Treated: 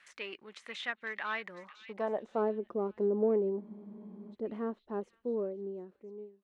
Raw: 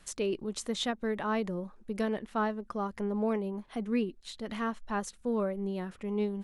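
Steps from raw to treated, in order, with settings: ending faded out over 2.04 s; de-esser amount 100%; in parallel at -7 dB: one-sided clip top -33 dBFS; on the sum: band-pass sweep 2000 Hz -> 380 Hz, 1.46–2.53; on a send: delay with a stepping band-pass 0.502 s, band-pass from 3100 Hz, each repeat 0.7 oct, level -10 dB; on the sum: spectral freeze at 3.63, 0.70 s; gain +4 dB

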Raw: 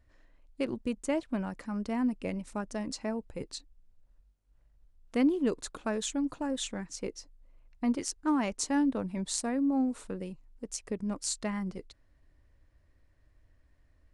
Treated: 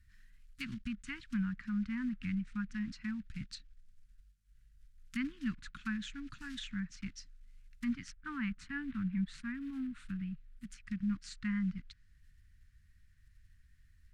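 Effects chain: block floating point 5-bit; elliptic band-stop 200–1500 Hz, stop band 80 dB; treble ducked by the level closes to 2200 Hz, closed at -37.5 dBFS; 8.12–10.8 bell 6000 Hz -9 dB 1.2 oct; gain +2 dB

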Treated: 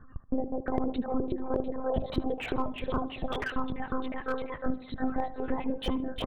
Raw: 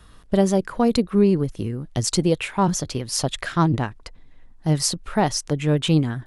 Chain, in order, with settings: Wiener smoothing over 9 samples; spectral gate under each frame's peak -25 dB strong; on a send: frequency-shifting echo 0.351 s, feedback 55%, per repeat +120 Hz, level -5 dB; on the sum: compressor 12:1, threshold -24 dBFS, peak gain reduction 13.5 dB; reverb removal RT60 1.6 s; monotone LPC vocoder at 8 kHz 260 Hz; tape echo 76 ms, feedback 59%, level -13 dB, low-pass 1200 Hz; slew limiter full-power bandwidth 58 Hz

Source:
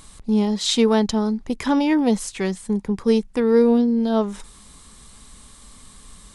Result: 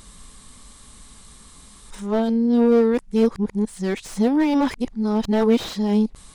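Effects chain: whole clip reversed; slew limiter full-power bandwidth 100 Hz

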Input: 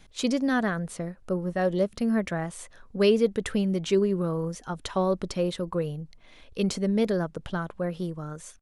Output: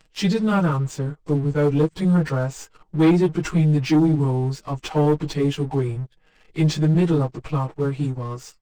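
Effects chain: pitch shift by moving bins -4 st; comb 6.4 ms, depth 35%; sample leveller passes 2

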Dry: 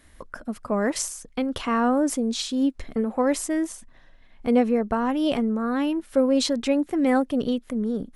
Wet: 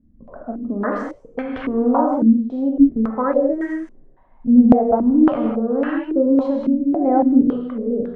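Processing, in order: non-linear reverb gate 0.23 s flat, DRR -0.5 dB; stepped low-pass 3.6 Hz 220–1700 Hz; gain -2.5 dB

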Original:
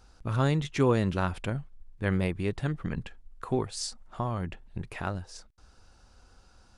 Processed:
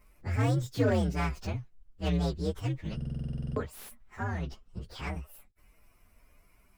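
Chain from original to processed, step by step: inharmonic rescaling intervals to 128%; stuck buffer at 2.96, samples 2048, times 12; slew limiter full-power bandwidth 47 Hz

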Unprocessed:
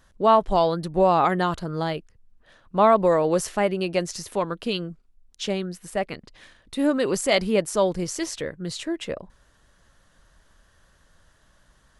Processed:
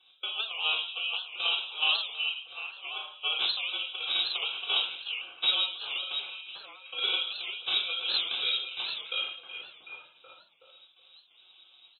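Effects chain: steep high-pass 450 Hz 72 dB/oct; bell 1300 Hz -9 dB 0.21 oct; comb 5.2 ms, depth 97%; negative-ratio compressor -25 dBFS, ratio -0.5; step gate "x.xxxxx.xx..xx.x" 130 bpm -24 dB; sample-and-hold 23×; delay with a stepping band-pass 0.374 s, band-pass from 950 Hz, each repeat 0.7 oct, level -3.5 dB; shoebox room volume 1000 m³, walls furnished, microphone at 3.5 m; inverted band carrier 3800 Hz; record warp 78 rpm, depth 160 cents; gain -8.5 dB

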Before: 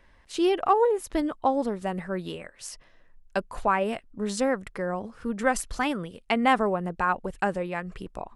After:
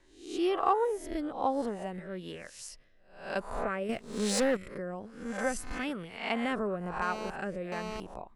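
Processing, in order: spectral swells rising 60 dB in 0.57 s; rotary speaker horn 1.1 Hz; 3.89–4.57 sample leveller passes 2; 7.02–8 GSM buzz -33 dBFS; gain -6 dB

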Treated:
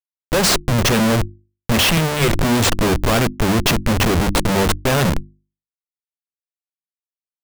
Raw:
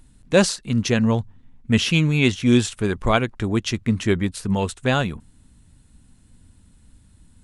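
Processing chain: 1.97–2.41 speaker cabinet 190–7400 Hz, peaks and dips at 270 Hz -9 dB, 550 Hz -9 dB, 1700 Hz +7 dB, 2800 Hz -9 dB, 4600 Hz -8 dB; Schmitt trigger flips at -28.5 dBFS; notches 50/100/150/200/250/300/350 Hz; gain +8 dB

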